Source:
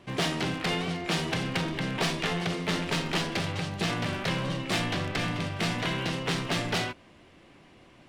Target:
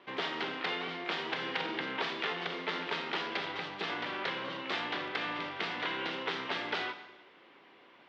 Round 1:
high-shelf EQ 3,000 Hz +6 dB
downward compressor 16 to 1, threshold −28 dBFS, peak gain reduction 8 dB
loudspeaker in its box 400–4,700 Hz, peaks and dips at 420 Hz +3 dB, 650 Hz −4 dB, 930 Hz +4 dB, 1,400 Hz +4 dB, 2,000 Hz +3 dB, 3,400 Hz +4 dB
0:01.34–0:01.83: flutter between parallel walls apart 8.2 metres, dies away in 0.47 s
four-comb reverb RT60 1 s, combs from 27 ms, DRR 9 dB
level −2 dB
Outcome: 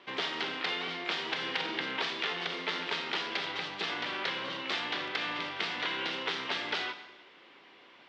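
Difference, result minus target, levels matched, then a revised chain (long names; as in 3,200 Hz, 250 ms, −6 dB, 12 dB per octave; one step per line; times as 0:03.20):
8,000 Hz band +5.0 dB
high-shelf EQ 3,000 Hz −4.5 dB
downward compressor 16 to 1, threshold −28 dBFS, peak gain reduction 5.5 dB
loudspeaker in its box 400–4,700 Hz, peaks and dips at 420 Hz +3 dB, 650 Hz −4 dB, 930 Hz +4 dB, 1,400 Hz +4 dB, 2,000 Hz +3 dB, 3,400 Hz +4 dB
0:01.34–0:01.83: flutter between parallel walls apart 8.2 metres, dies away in 0.47 s
four-comb reverb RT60 1 s, combs from 27 ms, DRR 9 dB
level −2 dB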